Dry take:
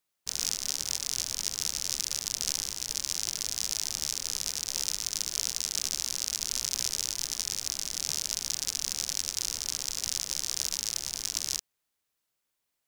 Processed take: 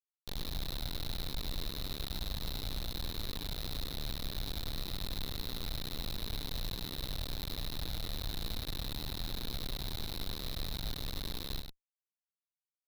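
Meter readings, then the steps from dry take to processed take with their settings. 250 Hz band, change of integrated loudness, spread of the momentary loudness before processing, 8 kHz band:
+8.0 dB, −10.0 dB, 2 LU, −23.0 dB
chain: high-pass filter 84 Hz 6 dB per octave
automatic gain control gain up to 9 dB
transistor ladder low-pass 4,300 Hz, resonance 75%
comparator with hysteresis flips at −39 dBFS
single-tap delay 101 ms −7 dB

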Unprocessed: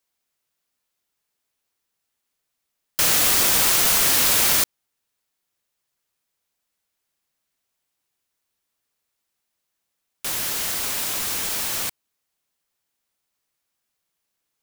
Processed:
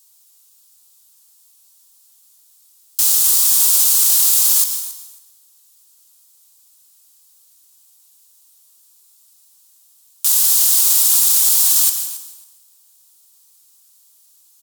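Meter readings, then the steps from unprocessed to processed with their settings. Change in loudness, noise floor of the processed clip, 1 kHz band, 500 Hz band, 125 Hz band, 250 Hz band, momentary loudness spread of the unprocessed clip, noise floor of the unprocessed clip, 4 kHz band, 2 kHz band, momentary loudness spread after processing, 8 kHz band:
+6.5 dB, −53 dBFS, −8.0 dB, below −10 dB, below −15 dB, below −10 dB, 11 LU, −79 dBFS, +1.5 dB, −11.0 dB, 12 LU, +8.5 dB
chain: in parallel at +3 dB: compressor whose output falls as the input rises −26 dBFS, ratio −0.5
on the sum: graphic EQ with 10 bands 125 Hz −4 dB, 500 Hz −5 dB, 1,000 Hz +7 dB, 2,000 Hz −8 dB, 4,000 Hz +5 dB, 8,000 Hz +7 dB, 16,000 Hz +11 dB
brickwall limiter −10 dBFS, peak gain reduction 15.5 dB
high-shelf EQ 2,500 Hz +11.5 dB
on a send: repeating echo 273 ms, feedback 16%, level −16.5 dB
on the sum: dense smooth reverb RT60 0.83 s, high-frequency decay 0.9×, pre-delay 105 ms, DRR 7 dB
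level −5.5 dB

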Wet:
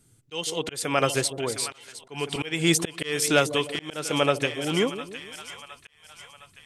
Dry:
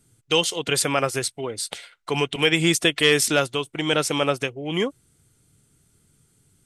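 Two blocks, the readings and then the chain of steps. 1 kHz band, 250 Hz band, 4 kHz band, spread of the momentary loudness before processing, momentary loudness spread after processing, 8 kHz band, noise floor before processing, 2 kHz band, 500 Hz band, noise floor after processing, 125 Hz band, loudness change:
−1.5 dB, −2.5 dB, −5.5 dB, 11 LU, 17 LU, −2.5 dB, −64 dBFS, −4.5 dB, −3.0 dB, −60 dBFS, −2.5 dB, −3.5 dB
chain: echo with a time of its own for lows and highs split 770 Hz, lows 152 ms, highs 711 ms, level −13 dB
volume swells 312 ms

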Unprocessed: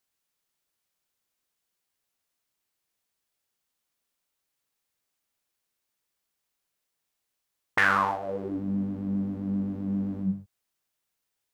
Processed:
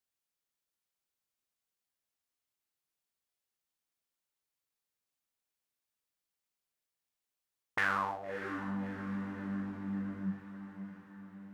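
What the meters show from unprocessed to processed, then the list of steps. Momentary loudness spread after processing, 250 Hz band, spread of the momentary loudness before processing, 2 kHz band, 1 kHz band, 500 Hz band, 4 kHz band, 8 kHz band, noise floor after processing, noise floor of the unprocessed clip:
16 LU, −8.5 dB, 10 LU, −8.5 dB, −8.5 dB, −8.5 dB, −8.5 dB, −8.5 dB, below −85 dBFS, −82 dBFS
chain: feedback delay with all-pass diffusion 623 ms, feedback 59%, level −10.5 dB
level −9 dB

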